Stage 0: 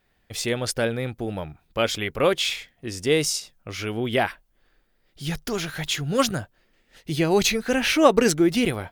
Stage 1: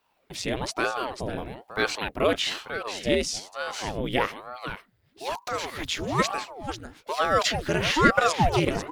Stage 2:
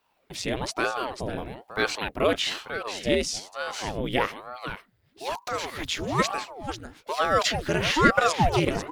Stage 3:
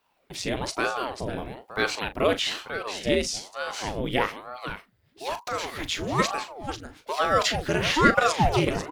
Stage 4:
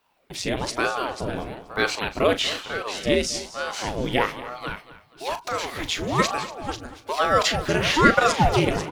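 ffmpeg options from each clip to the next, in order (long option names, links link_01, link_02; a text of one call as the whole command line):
ffmpeg -i in.wav -filter_complex "[0:a]acrossover=split=7400[link_01][link_02];[link_02]acompressor=threshold=-46dB:ratio=4:attack=1:release=60[link_03];[link_01][link_03]amix=inputs=2:normalize=0,aecho=1:1:494:0.316,aeval=exprs='val(0)*sin(2*PI*540*n/s+540*0.85/1.1*sin(2*PI*1.1*n/s))':channel_layout=same" out.wav
ffmpeg -i in.wav -af anull out.wav
ffmpeg -i in.wav -filter_complex "[0:a]asplit=2[link_01][link_02];[link_02]adelay=39,volume=-12dB[link_03];[link_01][link_03]amix=inputs=2:normalize=0" out.wav
ffmpeg -i in.wav -af "aecho=1:1:238|476|714:0.158|0.0618|0.0241,volume=2.5dB" out.wav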